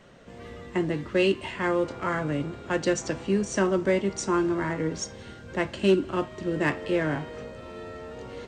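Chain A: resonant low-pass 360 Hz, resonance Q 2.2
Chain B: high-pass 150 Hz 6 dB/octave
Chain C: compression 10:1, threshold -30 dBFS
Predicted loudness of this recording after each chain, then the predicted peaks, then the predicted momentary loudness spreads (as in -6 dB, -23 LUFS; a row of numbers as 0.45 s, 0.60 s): -23.0 LUFS, -28.0 LUFS, -36.0 LUFS; -6.5 dBFS, -12.5 dBFS, -18.0 dBFS; 19 LU, 16 LU, 6 LU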